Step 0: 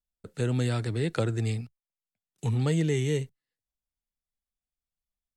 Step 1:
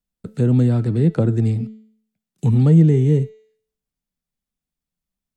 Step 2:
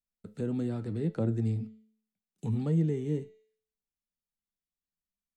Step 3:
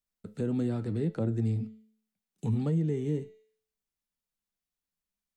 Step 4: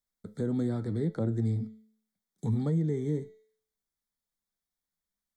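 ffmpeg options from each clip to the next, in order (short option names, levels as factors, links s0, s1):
-filter_complex "[0:a]equalizer=f=190:w=0.97:g=13,bandreject=f=218.2:t=h:w=4,bandreject=f=436.4:t=h:w=4,bandreject=f=654.6:t=h:w=4,bandreject=f=872.8:t=h:w=4,bandreject=f=1091:t=h:w=4,bandreject=f=1309.2:t=h:w=4,bandreject=f=1527.4:t=h:w=4,bandreject=f=1745.6:t=h:w=4,bandreject=f=1963.8:t=h:w=4,bandreject=f=2182:t=h:w=4,bandreject=f=2400.2:t=h:w=4,bandreject=f=2618.4:t=h:w=4,bandreject=f=2836.6:t=h:w=4,bandreject=f=3054.8:t=h:w=4,bandreject=f=3273:t=h:w=4,bandreject=f=3491.2:t=h:w=4,bandreject=f=3709.4:t=h:w=4,bandreject=f=3927.6:t=h:w=4,bandreject=f=4145.8:t=h:w=4,bandreject=f=4364:t=h:w=4,bandreject=f=4582.2:t=h:w=4,bandreject=f=4800.4:t=h:w=4,bandreject=f=5018.6:t=h:w=4,bandreject=f=5236.8:t=h:w=4,bandreject=f=5455:t=h:w=4,bandreject=f=5673.2:t=h:w=4,bandreject=f=5891.4:t=h:w=4,bandreject=f=6109.6:t=h:w=4,bandreject=f=6327.8:t=h:w=4,bandreject=f=6546:t=h:w=4,bandreject=f=6764.2:t=h:w=4,bandreject=f=6982.4:t=h:w=4,bandreject=f=7200.6:t=h:w=4,bandreject=f=7418.8:t=h:w=4,acrossover=split=560|1200[s0][s1][s2];[s2]acompressor=threshold=0.00316:ratio=5[s3];[s0][s1][s3]amix=inputs=3:normalize=0,volume=1.58"
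-af "equalizer=f=130:t=o:w=0.24:g=-11,flanger=delay=8.4:depth=2.7:regen=75:speed=0.73:shape=triangular,volume=0.398"
-af "alimiter=limit=0.0708:level=0:latency=1:release=160,volume=1.33"
-af "asuperstop=centerf=2700:order=12:qfactor=3.2"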